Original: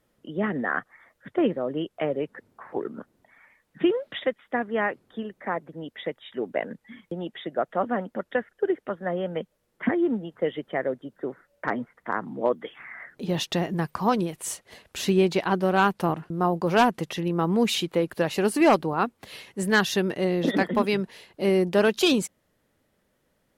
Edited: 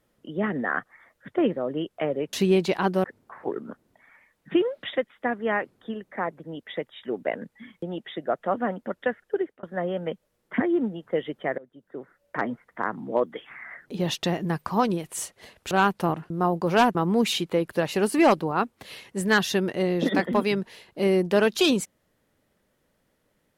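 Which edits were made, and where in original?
0:08.51–0:08.92: fade out equal-power
0:10.87–0:11.71: fade in, from −24 dB
0:15.00–0:15.71: move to 0:02.33
0:16.95–0:17.37: remove

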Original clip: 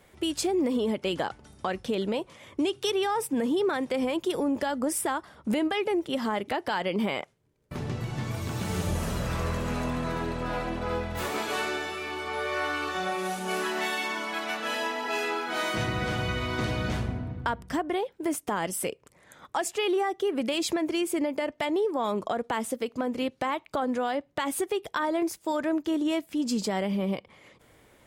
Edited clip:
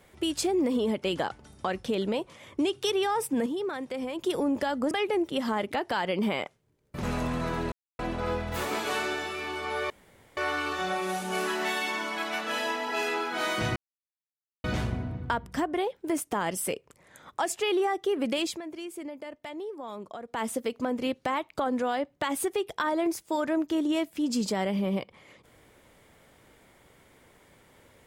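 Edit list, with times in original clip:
0:03.46–0:04.19: clip gain −6 dB
0:04.91–0:05.68: remove
0:07.80–0:09.66: remove
0:10.35–0:10.62: silence
0:12.53: splice in room tone 0.47 s
0:15.92–0:16.80: silence
0:20.57–0:22.60: duck −11 dB, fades 0.16 s

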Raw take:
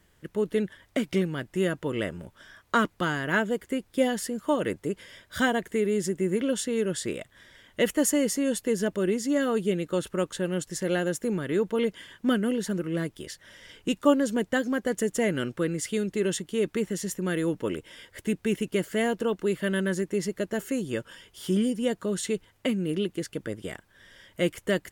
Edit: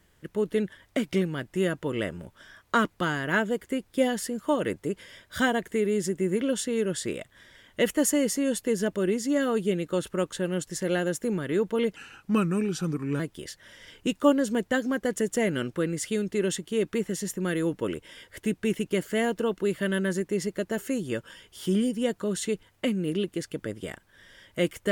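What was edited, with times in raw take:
0:11.96–0:13.01: play speed 85%

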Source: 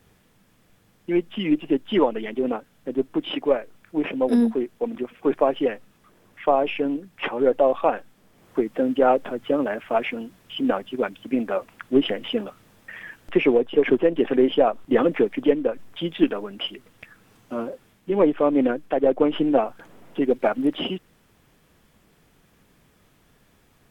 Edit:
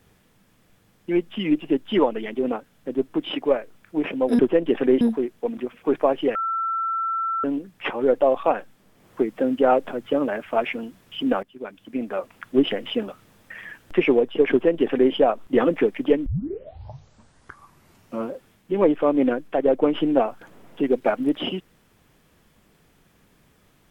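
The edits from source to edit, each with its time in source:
0:05.73–0:06.82: beep over 1,340 Hz −22 dBFS
0:10.81–0:11.84: fade in, from −17.5 dB
0:13.89–0:14.51: duplicate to 0:04.39
0:15.64: tape start 2.02 s

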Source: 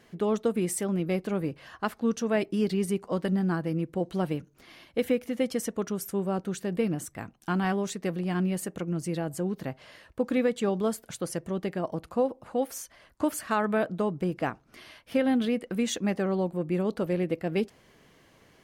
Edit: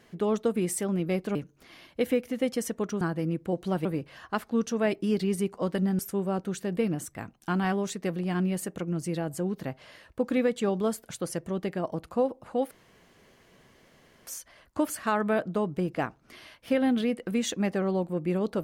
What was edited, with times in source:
0:01.35–0:03.49: swap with 0:04.33–0:05.99
0:12.71: splice in room tone 1.56 s

